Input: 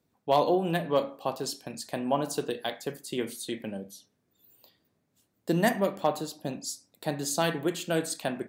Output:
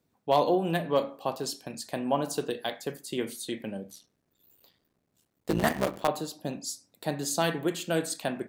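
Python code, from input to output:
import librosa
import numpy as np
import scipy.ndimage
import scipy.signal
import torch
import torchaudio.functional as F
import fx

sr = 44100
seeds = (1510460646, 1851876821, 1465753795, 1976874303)

y = fx.cycle_switch(x, sr, every=3, mode='muted', at=(3.9, 6.08))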